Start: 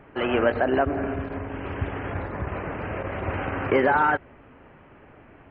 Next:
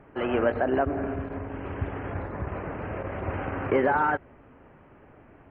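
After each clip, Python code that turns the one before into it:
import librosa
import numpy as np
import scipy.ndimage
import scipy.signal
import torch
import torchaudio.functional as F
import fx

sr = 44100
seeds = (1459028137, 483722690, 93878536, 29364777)

y = fx.high_shelf(x, sr, hz=2900.0, db=-11.5)
y = y * librosa.db_to_amplitude(-2.0)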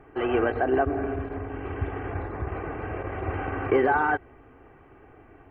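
y = x + 0.53 * np.pad(x, (int(2.6 * sr / 1000.0), 0))[:len(x)]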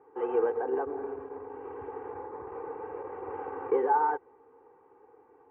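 y = fx.double_bandpass(x, sr, hz=650.0, octaves=0.88)
y = y * librosa.db_to_amplitude(2.5)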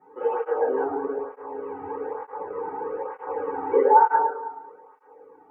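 y = fx.echo_wet_bandpass(x, sr, ms=107, feedback_pct=54, hz=700.0, wet_db=-4.5)
y = fx.rev_fdn(y, sr, rt60_s=0.51, lf_ratio=0.75, hf_ratio=0.65, size_ms=32.0, drr_db=-9.0)
y = fx.flanger_cancel(y, sr, hz=1.1, depth_ms=2.0)
y = y * librosa.db_to_amplitude(-1.0)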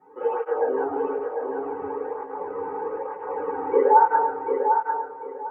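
y = fx.echo_feedback(x, sr, ms=748, feedback_pct=24, wet_db=-5.5)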